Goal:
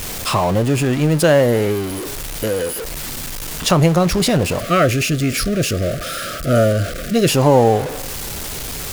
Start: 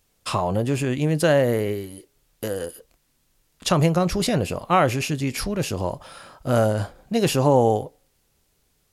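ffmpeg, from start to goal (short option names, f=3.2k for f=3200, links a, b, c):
-filter_complex "[0:a]aeval=exprs='val(0)+0.5*0.0562*sgn(val(0))':c=same,asettb=1/sr,asplit=3[a][b][c];[a]atrim=end=4.604[d];[b]atrim=start=4.6:end=7.29,asetpts=PTS-STARTPTS,afade=t=in:d=0.004:c=qsin,afade=t=out:st=2.686:d=0.004:c=qsin,asuperstop=centerf=900:order=20:qfactor=2.1[e];[c]atrim=start=7.286[f];[d][e]acrossfade=d=0.004:c1=hsin:c2=qsin[g];[g][f]acrossfade=d=0.004:c1=qsin:c2=hsin,volume=4dB"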